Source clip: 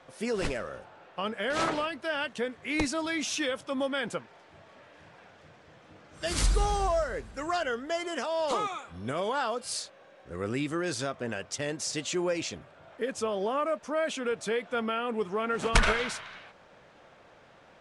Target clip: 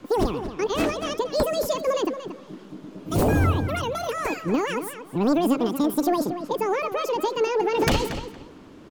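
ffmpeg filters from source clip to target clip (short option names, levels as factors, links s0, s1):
-filter_complex "[0:a]equalizer=f=150:t=o:w=0.25:g=5.5,acrossover=split=230|500|2100[s0][s1][s2][s3];[s0]aeval=exprs='0.188*sin(PI/2*7.94*val(0)/0.188)':c=same[s4];[s4][s1][s2][s3]amix=inputs=4:normalize=0,asplit=2[s5][s6];[s6]adelay=463,lowpass=f=2300:p=1,volume=0.316,asplit=2[s7][s8];[s8]adelay=463,lowpass=f=2300:p=1,volume=0.2,asplit=2[s9][s10];[s10]adelay=463,lowpass=f=2300:p=1,volume=0.2[s11];[s5][s7][s9][s11]amix=inputs=4:normalize=0,asetrate=88200,aresample=44100,volume=0.794"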